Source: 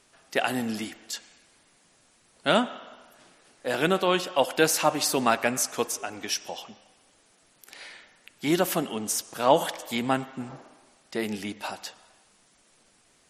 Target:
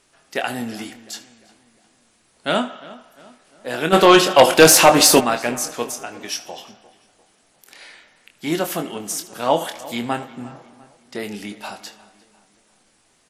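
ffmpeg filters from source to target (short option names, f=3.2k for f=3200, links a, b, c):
-filter_complex "[0:a]asplit=2[a][b];[b]aecho=0:1:25|77:0.422|0.133[c];[a][c]amix=inputs=2:normalize=0,asplit=3[d][e][f];[d]afade=t=out:st=3.92:d=0.02[g];[e]aeval=exprs='0.708*sin(PI/2*2.82*val(0)/0.708)':c=same,afade=t=in:st=3.92:d=0.02,afade=t=out:st=5.19:d=0.02[h];[f]afade=t=in:st=5.19:d=0.02[i];[g][h][i]amix=inputs=3:normalize=0,asplit=2[j][k];[k]adelay=350,lowpass=f=3k:p=1,volume=-19dB,asplit=2[l][m];[m]adelay=350,lowpass=f=3k:p=1,volume=0.47,asplit=2[n][o];[o]adelay=350,lowpass=f=3k:p=1,volume=0.47,asplit=2[p][q];[q]adelay=350,lowpass=f=3k:p=1,volume=0.47[r];[l][n][p][r]amix=inputs=4:normalize=0[s];[j][s]amix=inputs=2:normalize=0,volume=1dB"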